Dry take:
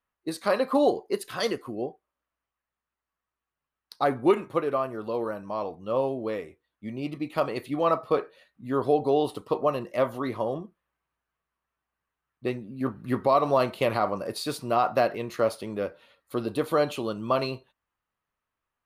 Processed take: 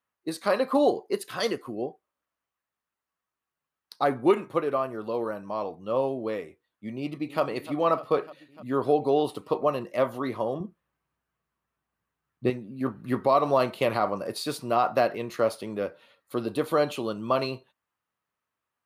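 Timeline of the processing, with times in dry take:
0:06.98–0:07.42: delay throw 300 ms, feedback 75%, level −15.5 dB
0:10.60–0:12.50: low-shelf EQ 270 Hz +11.5 dB
whole clip: high-pass filter 99 Hz

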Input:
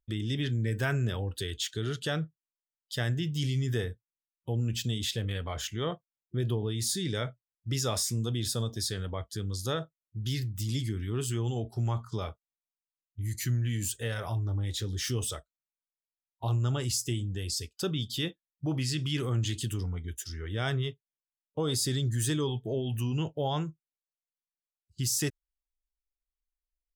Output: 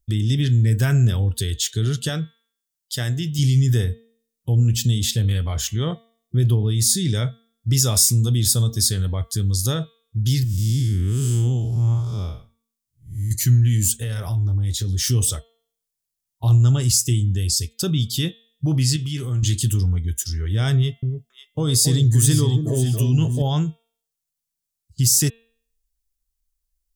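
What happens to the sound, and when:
0:02.09–0:03.39: low-shelf EQ 180 Hz −10 dB
0:07.77–0:09.78: high-shelf EQ 9,100 Hz +5.5 dB
0:10.44–0:13.31: spectrum smeared in time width 197 ms
0:13.98–0:15.00: downward compressor 4 to 1, threshold −32 dBFS
0:18.96–0:19.43: tuned comb filter 200 Hz, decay 0.2 s
0:20.75–0:23.42: delay that swaps between a low-pass and a high-pass 275 ms, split 920 Hz, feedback 51%, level −5.5 dB
whole clip: bass and treble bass +12 dB, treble +12 dB; hum removal 228.5 Hz, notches 18; level +2.5 dB

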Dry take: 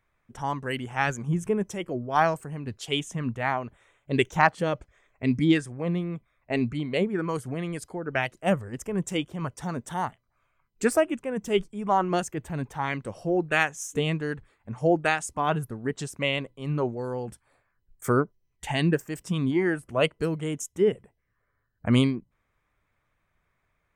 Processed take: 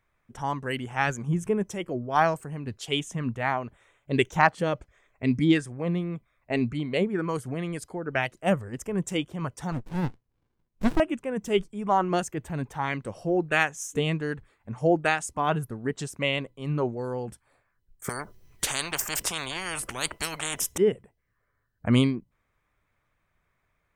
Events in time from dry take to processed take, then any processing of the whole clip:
0:09.72–0:11.00: windowed peak hold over 65 samples
0:18.09–0:20.78: every bin compressed towards the loudest bin 10 to 1

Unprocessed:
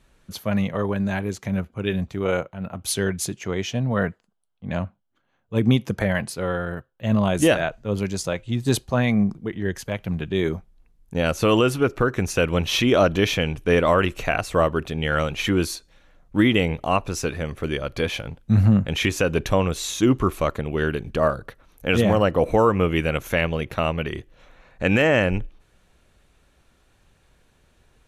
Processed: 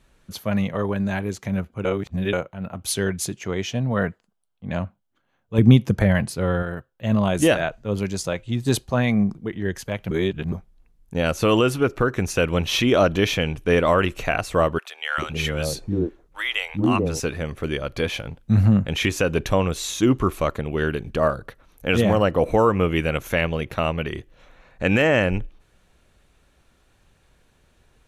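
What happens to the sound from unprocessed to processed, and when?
0:01.85–0:02.33: reverse
0:05.58–0:06.63: low-shelf EQ 230 Hz +9 dB
0:10.11–0:10.52: reverse
0:14.78–0:17.20: three-band delay without the direct sound highs, lows, mids 400/440 ms, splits 240/760 Hz

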